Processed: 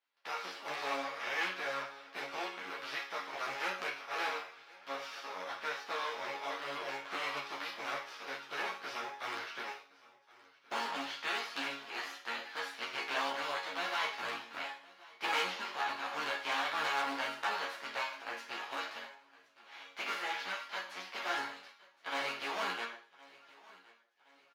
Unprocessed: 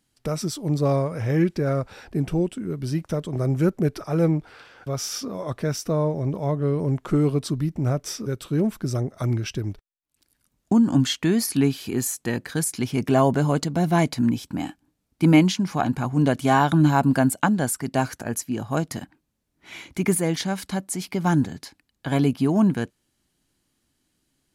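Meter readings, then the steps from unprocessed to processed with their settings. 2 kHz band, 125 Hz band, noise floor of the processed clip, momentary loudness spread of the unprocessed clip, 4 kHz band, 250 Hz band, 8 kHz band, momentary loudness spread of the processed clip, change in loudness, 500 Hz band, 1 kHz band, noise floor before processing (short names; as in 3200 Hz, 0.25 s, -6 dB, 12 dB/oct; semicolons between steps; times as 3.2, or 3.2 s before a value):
-2.5 dB, under -40 dB, -65 dBFS, 11 LU, -5.0 dB, -30.5 dB, -20.0 dB, 9 LU, -14.5 dB, -17.5 dB, -8.5 dB, -74 dBFS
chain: spectral contrast lowered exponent 0.35; air absorption 290 m; resonator bank F#2 major, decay 0.44 s; in parallel at +1.5 dB: compressor, threshold -42 dBFS, peak gain reduction 14.5 dB; on the sum: hard clip -27.5 dBFS, distortion -15 dB; HPF 770 Hz 12 dB/oct; on a send: feedback echo 1.067 s, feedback 45%, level -22 dB; on the sum: ensemble effect; gain +6 dB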